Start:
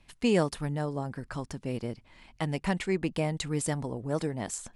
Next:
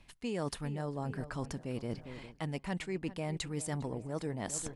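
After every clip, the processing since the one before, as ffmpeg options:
ffmpeg -i in.wav -filter_complex "[0:a]asplit=2[link_01][link_02];[link_02]adelay=404,lowpass=frequency=2700:poles=1,volume=-18dB,asplit=2[link_03][link_04];[link_04]adelay=404,lowpass=frequency=2700:poles=1,volume=0.45,asplit=2[link_05][link_06];[link_06]adelay=404,lowpass=frequency=2700:poles=1,volume=0.45,asplit=2[link_07][link_08];[link_08]adelay=404,lowpass=frequency=2700:poles=1,volume=0.45[link_09];[link_01][link_03][link_05][link_07][link_09]amix=inputs=5:normalize=0,areverse,acompressor=threshold=-38dB:ratio=6,areverse,volume=4dB" out.wav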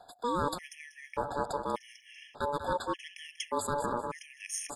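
ffmpeg -i in.wav -af "aecho=1:1:190|380|570:0.335|0.0804|0.0193,aeval=exprs='val(0)*sin(2*PI*720*n/s)':channel_layout=same,afftfilt=real='re*gt(sin(2*PI*0.85*pts/sr)*(1-2*mod(floor(b*sr/1024/1700),2)),0)':imag='im*gt(sin(2*PI*0.85*pts/sr)*(1-2*mod(floor(b*sr/1024/1700),2)),0)':win_size=1024:overlap=0.75,volume=8dB" out.wav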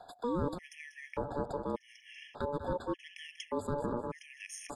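ffmpeg -i in.wav -filter_complex "[0:a]highshelf=frequency=5100:gain=-9.5,acrossover=split=530[link_01][link_02];[link_02]acompressor=threshold=-45dB:ratio=5[link_03];[link_01][link_03]amix=inputs=2:normalize=0,volume=2.5dB" out.wav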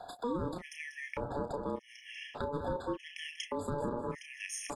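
ffmpeg -i in.wav -filter_complex "[0:a]asplit=2[link_01][link_02];[link_02]adelay=32,volume=-7.5dB[link_03];[link_01][link_03]amix=inputs=2:normalize=0,alimiter=level_in=6dB:limit=-24dB:level=0:latency=1:release=275,volume=-6dB,volume=4.5dB" out.wav

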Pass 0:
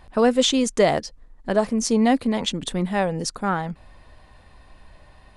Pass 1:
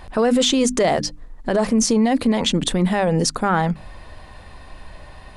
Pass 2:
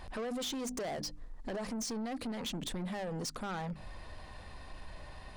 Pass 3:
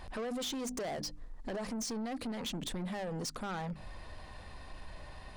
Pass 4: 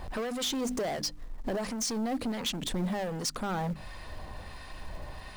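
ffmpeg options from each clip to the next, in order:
ffmpeg -i in.wav -af "bandreject=frequency=50:width_type=h:width=6,bandreject=frequency=100:width_type=h:width=6,bandreject=frequency=150:width_type=h:width=6,bandreject=frequency=200:width_type=h:width=6,bandreject=frequency=250:width_type=h:width=6,bandreject=frequency=300:width_type=h:width=6,acontrast=30,alimiter=limit=-14.5dB:level=0:latency=1:release=31,volume=4.5dB" out.wav
ffmpeg -i in.wav -af "equalizer=frequency=5200:width_type=o:width=0.77:gain=3,acompressor=threshold=-22dB:ratio=6,asoftclip=type=tanh:threshold=-27dB,volume=-7.5dB" out.wav
ffmpeg -i in.wav -af anull out.wav
ffmpeg -i in.wav -filter_complex "[0:a]acrossover=split=1100[link_01][link_02];[link_01]aeval=exprs='val(0)*(1-0.5/2+0.5/2*cos(2*PI*1.4*n/s))':channel_layout=same[link_03];[link_02]aeval=exprs='val(0)*(1-0.5/2-0.5/2*cos(2*PI*1.4*n/s))':channel_layout=same[link_04];[link_03][link_04]amix=inputs=2:normalize=0,asplit=2[link_05][link_06];[link_06]acrusher=bits=4:mode=log:mix=0:aa=0.000001,volume=-4dB[link_07];[link_05][link_07]amix=inputs=2:normalize=0,volume=3.5dB" out.wav

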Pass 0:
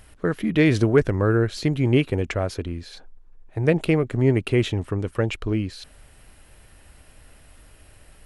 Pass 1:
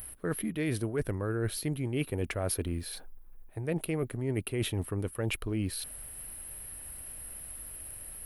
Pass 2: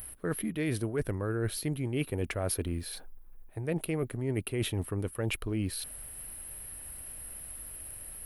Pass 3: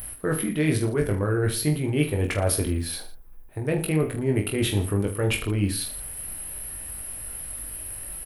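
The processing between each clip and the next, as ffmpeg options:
ffmpeg -i in.wav -af "areverse,acompressor=threshold=-26dB:ratio=10,areverse,aexciter=amount=12.9:drive=7.4:freq=9900,volume=-2dB" out.wav
ffmpeg -i in.wav -af anull out.wav
ffmpeg -i in.wav -af "aecho=1:1:20|45|76.25|115.3|164.1:0.631|0.398|0.251|0.158|0.1,volume=6dB" out.wav

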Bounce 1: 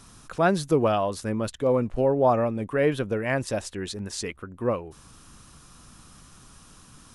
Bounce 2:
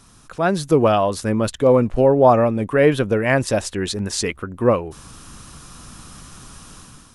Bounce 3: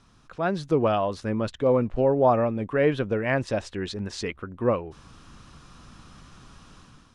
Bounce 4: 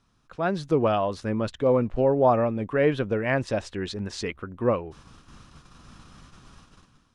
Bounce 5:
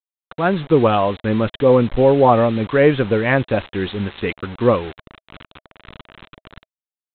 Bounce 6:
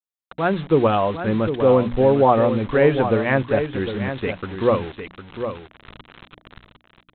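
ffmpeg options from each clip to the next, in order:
ffmpeg -i in.wav -af "dynaudnorm=framelen=400:gausssize=3:maxgain=10dB" out.wav
ffmpeg -i in.wav -af "lowpass=4500,volume=-7dB" out.wav
ffmpeg -i in.wav -af "agate=range=-9dB:threshold=-48dB:ratio=16:detection=peak" out.wav
ffmpeg -i in.wav -af "aresample=8000,acrusher=bits=6:mix=0:aa=0.000001,aresample=44100,bandreject=frequency=640:width=12,volume=8.5dB" out.wav
ffmpeg -i in.wav -af "bandreject=frequency=60:width_type=h:width=6,bandreject=frequency=120:width_type=h:width=6,bandreject=frequency=180:width_type=h:width=6,bandreject=frequency=240:width_type=h:width=6,bandreject=frequency=300:width_type=h:width=6,aecho=1:1:755:0.355,adynamicequalizer=threshold=0.0224:dfrequency=2200:dqfactor=0.7:tfrequency=2200:tqfactor=0.7:attack=5:release=100:ratio=0.375:range=2:mode=cutabove:tftype=highshelf,volume=-2.5dB" out.wav

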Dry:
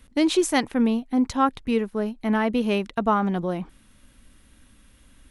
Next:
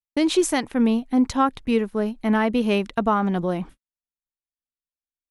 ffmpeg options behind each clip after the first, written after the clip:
ffmpeg -i in.wav -af "alimiter=limit=-12.5dB:level=0:latency=1:release=324,agate=range=-58dB:threshold=-41dB:ratio=16:detection=peak,volume=2.5dB" out.wav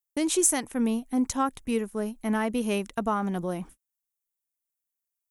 ffmpeg -i in.wav -af "aexciter=amount=4.2:drive=7.1:freq=6000,volume=-6.5dB" out.wav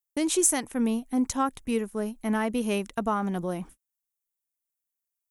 ffmpeg -i in.wav -af anull out.wav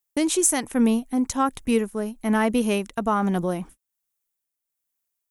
ffmpeg -i in.wav -af "tremolo=f=1.2:d=0.41,volume=6.5dB" out.wav

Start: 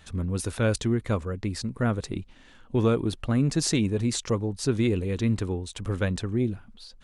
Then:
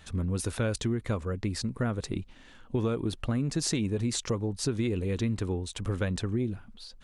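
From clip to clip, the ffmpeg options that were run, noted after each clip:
ffmpeg -i in.wav -af "acompressor=threshold=-25dB:ratio=6" out.wav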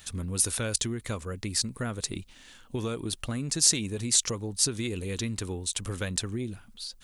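ffmpeg -i in.wav -af "crystalizer=i=5.5:c=0,volume=-4dB" out.wav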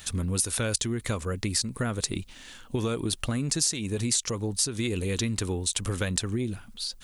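ffmpeg -i in.wav -af "acompressor=threshold=-29dB:ratio=6,volume=5.5dB" out.wav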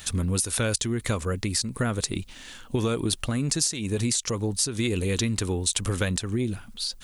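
ffmpeg -i in.wav -af "alimiter=limit=-15dB:level=0:latency=1:release=217,volume=3dB" out.wav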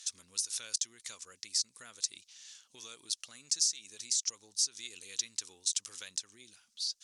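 ffmpeg -i in.wav -af "bandpass=frequency=5800:width_type=q:width=2.7:csg=0" out.wav

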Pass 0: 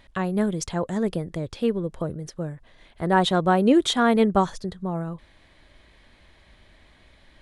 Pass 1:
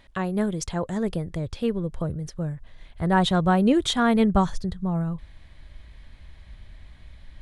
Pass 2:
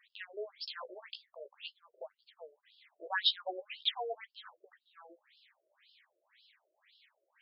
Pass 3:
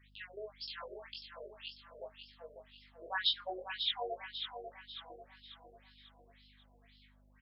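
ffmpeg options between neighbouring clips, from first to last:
ffmpeg -i in.wav -af "asubboost=boost=5:cutoff=150,volume=-1dB" out.wav
ffmpeg -i in.wav -af "flanger=delay=8.1:depth=9.8:regen=16:speed=0.46:shape=triangular,crystalizer=i=8:c=0,afftfilt=real='re*between(b*sr/1024,460*pow(3900/460,0.5+0.5*sin(2*PI*1.9*pts/sr))/1.41,460*pow(3900/460,0.5+0.5*sin(2*PI*1.9*pts/sr))*1.41)':imag='im*between(b*sr/1024,460*pow(3900/460,0.5+0.5*sin(2*PI*1.9*pts/sr))/1.41,460*pow(3900/460,0.5+0.5*sin(2*PI*1.9*pts/sr))*1.41)':win_size=1024:overlap=0.75,volume=-9dB" out.wav
ffmpeg -i in.wav -filter_complex "[0:a]flanger=delay=18.5:depth=6.1:speed=0.44,aeval=exprs='val(0)+0.000501*(sin(2*PI*50*n/s)+sin(2*PI*2*50*n/s)/2+sin(2*PI*3*50*n/s)/3+sin(2*PI*4*50*n/s)/4+sin(2*PI*5*50*n/s)/5)':channel_layout=same,asplit=2[link_01][link_02];[link_02]aecho=0:1:544|1088|1632|2176|2720:0.422|0.194|0.0892|0.041|0.0189[link_03];[link_01][link_03]amix=inputs=2:normalize=0,volume=1.5dB" out.wav

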